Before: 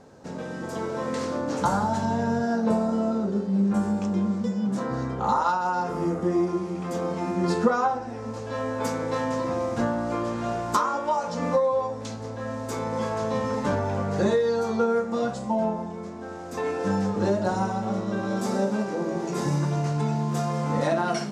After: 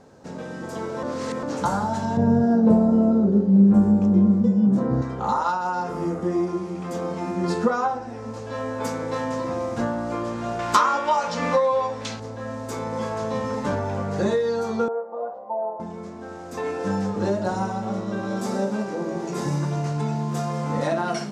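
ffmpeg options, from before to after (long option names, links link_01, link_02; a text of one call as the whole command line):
ffmpeg -i in.wav -filter_complex "[0:a]asettb=1/sr,asplit=3[link_01][link_02][link_03];[link_01]atrim=end=2.174[link_04];[link_02]atrim=start=2.17:end=5.02,asetpts=PTS-STARTPTS,afade=type=in:duration=0.004:curve=qsin,afade=type=out:start_time=2.846:duration=0.004:curve=qsin,tiltshelf=frequency=820:gain=9.5[link_05];[link_03]atrim=start=5.016[link_06];[link_04][link_05]acrossfade=duration=0.004:curve1=hsin:curve2=qsin[link_07];[link_07][link_06]acrossfade=duration=0.004:curve1=qsin:curve2=hsin,asettb=1/sr,asplit=3[link_08][link_09][link_10];[link_08]atrim=end=10.594[link_11];[link_09]atrim=start=10.59:end=12.2,asetpts=PTS-STARTPTS,afade=type=in:duration=0.004:curve=qsin,afade=type=out:start_time=1.606:duration=0.004:curve=qsin,equalizer=frequency=2600:width=0.51:gain=11[link_12];[link_10]atrim=start=12.196[link_13];[link_11][link_12]acrossfade=duration=0.004:curve1=hsin:curve2=qsin[link_14];[link_14][link_13]acrossfade=duration=0.004:curve1=qsin:curve2=hsin,asettb=1/sr,asplit=3[link_15][link_16][link_17];[link_15]atrim=end=14.884[link_18];[link_16]atrim=start=14.88:end=15.8,asetpts=PTS-STARTPTS,afade=type=in:duration=0.004:curve=qsin,afade=type=out:start_time=0.916:duration=0.004:curve=qsin,asuperpass=centerf=690:order=4:qfactor=1.3[link_19];[link_17]atrim=start=15.796[link_20];[link_18][link_19]acrossfade=duration=0.004:curve1=hsin:curve2=qsin[link_21];[link_21][link_20]acrossfade=duration=0.004:curve1=qsin:curve2=hsin,asplit=3[link_22][link_23][link_24];[link_22]atrim=end=1.032[link_25];[link_23]atrim=start=1.028:end=1.432,asetpts=PTS-STARTPTS,areverse[link_26];[link_24]atrim=start=1.428[link_27];[link_25][link_26]acrossfade=duration=0.004:curve1=hsin:curve2=hsin[link_28];[link_28][link_27]acrossfade=duration=0.004:curve1=hsin:curve2=hsin" out.wav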